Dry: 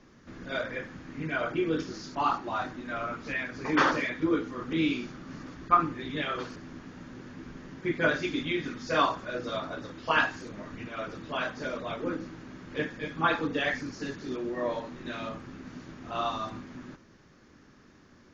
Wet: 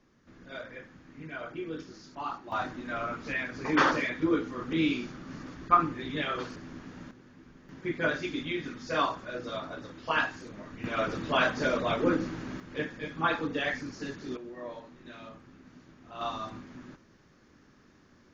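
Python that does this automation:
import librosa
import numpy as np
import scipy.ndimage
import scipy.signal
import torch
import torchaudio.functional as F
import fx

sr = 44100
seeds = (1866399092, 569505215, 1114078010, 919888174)

y = fx.gain(x, sr, db=fx.steps((0.0, -9.0), (2.52, 0.0), (7.11, -10.0), (7.69, -3.0), (10.84, 6.5), (12.6, -2.0), (14.37, -10.0), (16.21, -3.0)))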